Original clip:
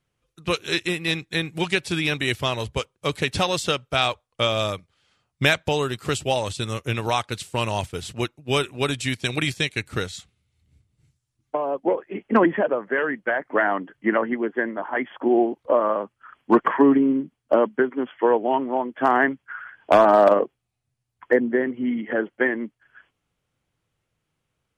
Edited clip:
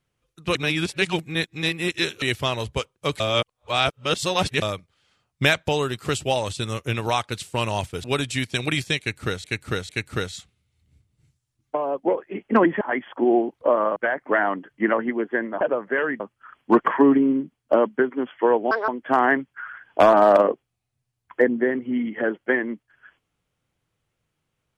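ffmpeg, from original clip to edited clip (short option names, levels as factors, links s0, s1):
-filter_complex "[0:a]asplit=14[s0][s1][s2][s3][s4][s5][s6][s7][s8][s9][s10][s11][s12][s13];[s0]atrim=end=0.552[s14];[s1]atrim=start=0.548:end=2.222,asetpts=PTS-STARTPTS,areverse[s15];[s2]atrim=start=2.218:end=3.202[s16];[s3]atrim=start=3.198:end=4.622,asetpts=PTS-STARTPTS,areverse[s17];[s4]atrim=start=4.618:end=8.042[s18];[s5]atrim=start=8.738:end=10.142[s19];[s6]atrim=start=9.688:end=10.142[s20];[s7]atrim=start=9.688:end=12.612[s21];[s8]atrim=start=14.848:end=16.002[s22];[s9]atrim=start=13.198:end=14.852[s23];[s10]atrim=start=12.608:end=13.202[s24];[s11]atrim=start=15.998:end=18.514[s25];[s12]atrim=start=18.51:end=18.8,asetpts=PTS-STARTPTS,asetrate=74088,aresample=44100,atrim=end_sample=7612,asetpts=PTS-STARTPTS[s26];[s13]atrim=start=18.796[s27];[s14][s15]acrossfade=d=0.004:c1=hsin:c2=hsin[s28];[s28][s16]acrossfade=d=0.004:c1=hsin:c2=hsin[s29];[s29][s17]acrossfade=d=0.004:c1=hsin:c2=hsin[s30];[s30][s18]acrossfade=d=0.004:c1=hsin:c2=hsin[s31];[s31][s19]acrossfade=d=0.004:c1=hsin:c2=hsin[s32];[s32][s20]acrossfade=d=0.004:c1=hsin:c2=hsin[s33];[s33][s21]acrossfade=d=0.004:c1=hsin:c2=hsin[s34];[s34][s22]acrossfade=d=0.004:c1=hsin:c2=hsin[s35];[s35][s23]acrossfade=d=0.004:c1=hsin:c2=hsin[s36];[s36][s24]acrossfade=d=0.004:c1=hsin:c2=hsin[s37];[s37][s25]acrossfade=d=0.004:c1=hsin:c2=hsin[s38];[s38][s26]acrossfade=d=0.004:c1=hsin:c2=hsin[s39];[s39][s27]acrossfade=d=0.004:c1=hsin:c2=hsin"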